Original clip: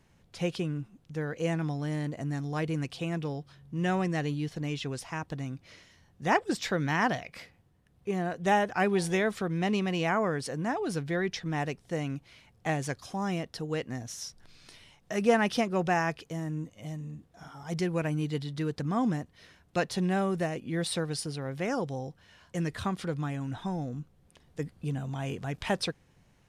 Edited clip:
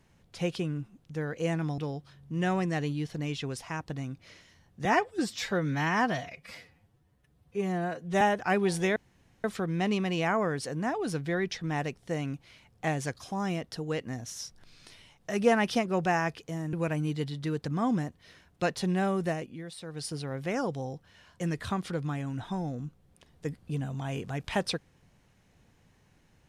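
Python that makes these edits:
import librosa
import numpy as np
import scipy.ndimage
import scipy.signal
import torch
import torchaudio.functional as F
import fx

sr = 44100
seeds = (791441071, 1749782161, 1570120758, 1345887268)

y = fx.edit(x, sr, fx.cut(start_s=1.78, length_s=1.42),
    fx.stretch_span(start_s=6.27, length_s=2.24, factor=1.5),
    fx.insert_room_tone(at_s=9.26, length_s=0.48),
    fx.cut(start_s=16.55, length_s=1.32),
    fx.fade_down_up(start_s=20.48, length_s=0.81, db=-12.0, fade_s=0.3), tone=tone)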